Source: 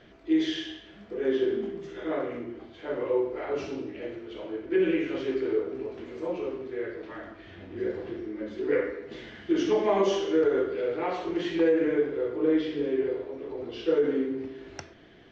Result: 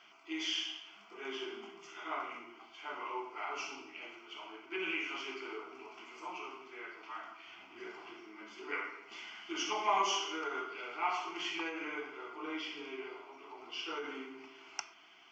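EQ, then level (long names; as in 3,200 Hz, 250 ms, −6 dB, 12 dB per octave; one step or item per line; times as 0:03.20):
high-pass filter 870 Hz 12 dB per octave
phaser with its sweep stopped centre 2,600 Hz, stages 8
+4.5 dB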